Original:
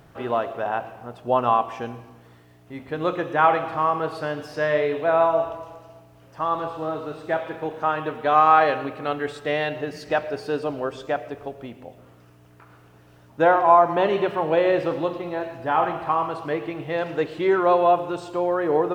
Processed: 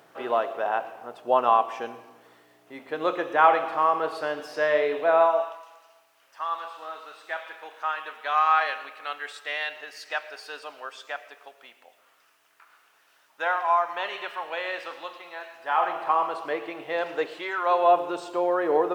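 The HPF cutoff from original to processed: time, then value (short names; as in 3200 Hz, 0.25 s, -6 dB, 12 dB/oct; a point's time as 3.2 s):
5.19 s 390 Hz
5.62 s 1300 Hz
15.52 s 1300 Hz
16.04 s 490 Hz
17.33 s 490 Hz
17.52 s 1300 Hz
17.98 s 370 Hz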